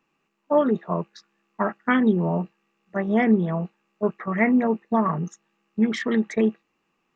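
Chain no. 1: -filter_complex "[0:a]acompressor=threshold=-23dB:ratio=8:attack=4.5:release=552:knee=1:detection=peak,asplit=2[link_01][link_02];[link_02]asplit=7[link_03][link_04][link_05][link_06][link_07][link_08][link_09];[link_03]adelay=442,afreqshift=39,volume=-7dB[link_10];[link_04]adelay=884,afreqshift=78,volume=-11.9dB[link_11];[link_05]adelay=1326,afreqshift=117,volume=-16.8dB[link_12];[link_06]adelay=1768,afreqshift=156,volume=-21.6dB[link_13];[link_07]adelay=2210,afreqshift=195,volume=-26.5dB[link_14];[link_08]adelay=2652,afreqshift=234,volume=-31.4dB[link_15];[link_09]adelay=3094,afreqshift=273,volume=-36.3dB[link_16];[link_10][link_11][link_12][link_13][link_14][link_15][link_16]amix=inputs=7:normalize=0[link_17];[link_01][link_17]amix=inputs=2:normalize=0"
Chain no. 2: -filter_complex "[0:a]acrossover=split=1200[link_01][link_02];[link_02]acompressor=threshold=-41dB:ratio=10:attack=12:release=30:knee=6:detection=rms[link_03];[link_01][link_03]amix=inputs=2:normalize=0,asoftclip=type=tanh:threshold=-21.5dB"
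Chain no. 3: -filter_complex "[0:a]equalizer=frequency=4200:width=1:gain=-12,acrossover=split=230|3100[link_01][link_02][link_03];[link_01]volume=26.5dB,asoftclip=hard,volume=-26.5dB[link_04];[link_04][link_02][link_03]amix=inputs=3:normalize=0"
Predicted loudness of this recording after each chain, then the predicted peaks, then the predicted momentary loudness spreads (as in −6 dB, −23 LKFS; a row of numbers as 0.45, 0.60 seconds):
−31.0, −29.0, −24.5 LKFS; −11.0, −21.5, −8.5 dBFS; 7, 8, 10 LU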